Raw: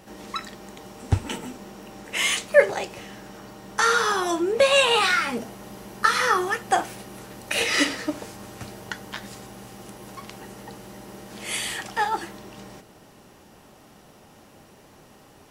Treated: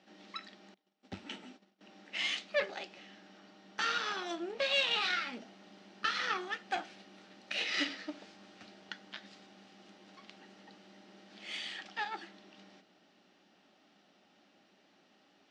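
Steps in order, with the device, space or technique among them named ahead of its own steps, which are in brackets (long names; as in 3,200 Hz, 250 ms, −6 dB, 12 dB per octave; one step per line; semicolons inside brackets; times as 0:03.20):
0:00.74–0:01.81: noise gate −38 dBFS, range −26 dB
high-pass filter 72 Hz
guitar amplifier (tube saturation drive 15 dB, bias 0.8; bass and treble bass −14 dB, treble +13 dB; loudspeaker in its box 97–3,900 Hz, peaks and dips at 130 Hz −9 dB, 190 Hz +9 dB, 280 Hz +5 dB, 470 Hz −8 dB, 1,000 Hz −9 dB)
level −7.5 dB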